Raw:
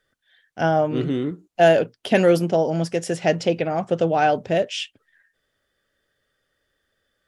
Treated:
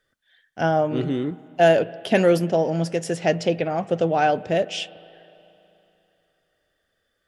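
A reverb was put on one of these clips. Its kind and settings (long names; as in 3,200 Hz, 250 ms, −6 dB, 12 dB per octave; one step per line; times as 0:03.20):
spring reverb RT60 3.1 s, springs 36/41 ms, chirp 25 ms, DRR 19 dB
level −1 dB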